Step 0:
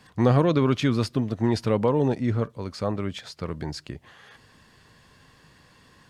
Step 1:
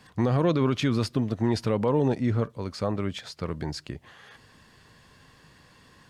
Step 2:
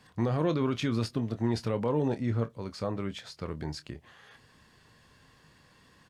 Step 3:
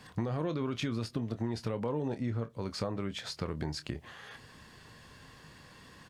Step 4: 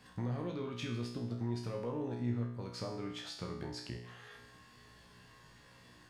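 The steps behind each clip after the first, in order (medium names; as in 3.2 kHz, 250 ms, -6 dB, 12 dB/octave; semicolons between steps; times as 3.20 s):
peak limiter -14.5 dBFS, peak gain reduction 7 dB
doubling 26 ms -11 dB; trim -5 dB
compression 6:1, threshold -37 dBFS, peak gain reduction 13 dB; trim +6 dB
feedback comb 60 Hz, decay 0.73 s, harmonics all, mix 90%; trim +5 dB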